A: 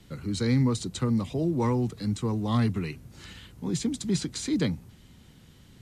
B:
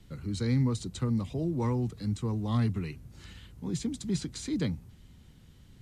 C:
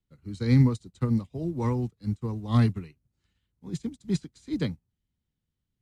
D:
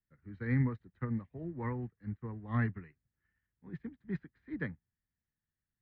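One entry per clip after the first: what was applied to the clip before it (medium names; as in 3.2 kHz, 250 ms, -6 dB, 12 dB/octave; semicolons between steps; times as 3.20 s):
bass shelf 100 Hz +10.5 dB; trim -6 dB
upward expansion 2.5:1, over -48 dBFS; trim +8.5 dB
four-pole ladder low-pass 1.9 kHz, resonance 75%; trim +1.5 dB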